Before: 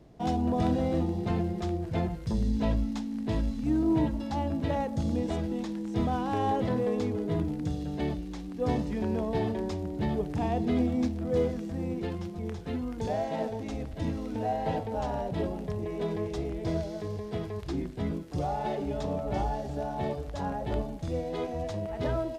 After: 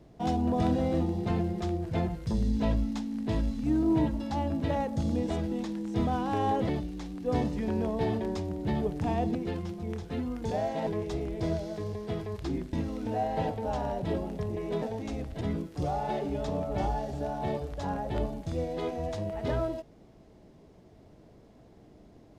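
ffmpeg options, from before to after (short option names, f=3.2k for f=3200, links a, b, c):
-filter_complex "[0:a]asplit=7[a][b][c][d][e][f][g];[a]atrim=end=6.692[h];[b]atrim=start=8.028:end=10.692[i];[c]atrim=start=11.908:end=13.432[j];[d]atrim=start=16.108:end=17.972[k];[e]atrim=start=14.018:end=16.112[l];[f]atrim=start=13.428:end=14.022[m];[g]atrim=start=17.968[n];[h][i]acrossfade=d=0.004:c1=hsin:c2=hsin[o];[o][j]acrossfade=d=0.004:c1=hsin:c2=hsin[p];[p][k]acrossfade=d=0.004:c1=hsin:c2=hsin[q];[q][l]acrossfade=d=0.004:c1=hsin:c2=hsin[r];[r][m]acrossfade=d=0.004:c1=hsin:c2=hsin[s];[s][n]acrossfade=d=0.004:c1=hsin:c2=hsin"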